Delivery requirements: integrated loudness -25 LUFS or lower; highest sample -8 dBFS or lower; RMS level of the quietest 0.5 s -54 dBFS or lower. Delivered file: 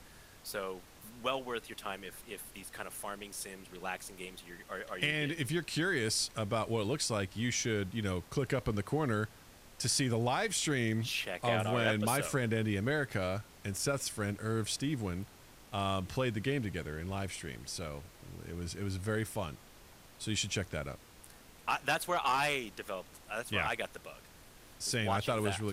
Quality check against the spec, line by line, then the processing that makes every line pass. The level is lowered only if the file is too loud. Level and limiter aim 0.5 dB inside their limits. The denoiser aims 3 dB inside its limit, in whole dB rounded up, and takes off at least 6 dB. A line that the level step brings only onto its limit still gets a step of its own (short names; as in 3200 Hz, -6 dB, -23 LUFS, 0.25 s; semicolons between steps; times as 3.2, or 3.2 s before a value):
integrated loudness -35.0 LUFS: OK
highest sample -16.0 dBFS: OK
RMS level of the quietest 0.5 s -56 dBFS: OK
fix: none